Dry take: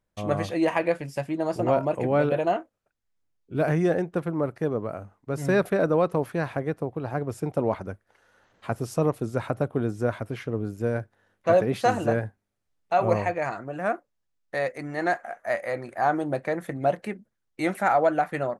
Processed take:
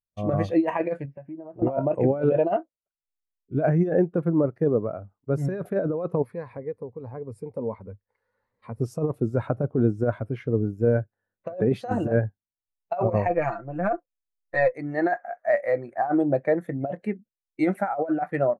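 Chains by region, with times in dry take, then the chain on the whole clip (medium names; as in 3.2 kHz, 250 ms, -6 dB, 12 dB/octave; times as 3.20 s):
1.05–1.62 s: low-pass 2.4 kHz 24 dB/octave + compression 5:1, threshold -37 dBFS
6.22–8.80 s: rippled EQ curve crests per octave 0.93, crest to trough 8 dB + compression 1.5:1, threshold -45 dBFS
13.27–14.74 s: partial rectifier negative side -3 dB + comb 5.9 ms, depth 60%
whole clip: compressor with a negative ratio -24 dBFS, ratio -0.5; spectral contrast expander 1.5:1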